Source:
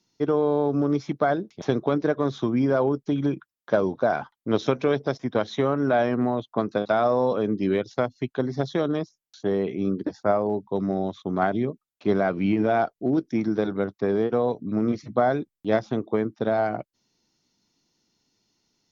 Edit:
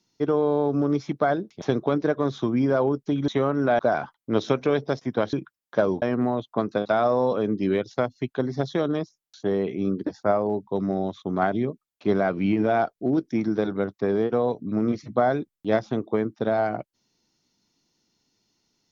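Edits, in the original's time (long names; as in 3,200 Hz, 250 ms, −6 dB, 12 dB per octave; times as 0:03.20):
0:03.28–0:03.97: swap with 0:05.51–0:06.02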